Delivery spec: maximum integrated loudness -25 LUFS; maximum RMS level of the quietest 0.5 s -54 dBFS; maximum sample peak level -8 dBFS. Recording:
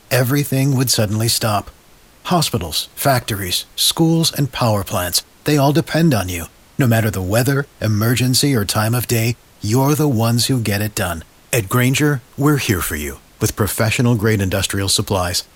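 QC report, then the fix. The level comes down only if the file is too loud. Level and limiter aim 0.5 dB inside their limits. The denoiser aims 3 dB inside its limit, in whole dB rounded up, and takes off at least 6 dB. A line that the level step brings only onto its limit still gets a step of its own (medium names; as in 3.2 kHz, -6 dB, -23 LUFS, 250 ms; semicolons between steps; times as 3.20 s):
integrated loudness -17.0 LUFS: fail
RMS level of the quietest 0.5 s -47 dBFS: fail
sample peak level -3.5 dBFS: fail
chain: trim -8.5 dB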